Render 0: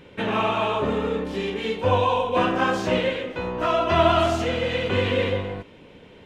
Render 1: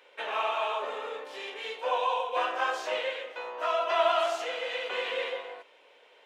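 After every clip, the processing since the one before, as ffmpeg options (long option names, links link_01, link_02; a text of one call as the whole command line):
ffmpeg -i in.wav -af "highpass=frequency=540:width=0.5412,highpass=frequency=540:width=1.3066,volume=-5.5dB" out.wav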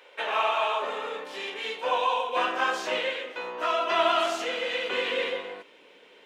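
ffmpeg -i in.wav -af "asubboost=boost=11.5:cutoff=200,volume=5dB" out.wav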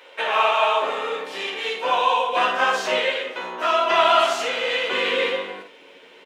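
ffmpeg -i in.wav -af "aecho=1:1:11|56:0.531|0.447,volume=5dB" out.wav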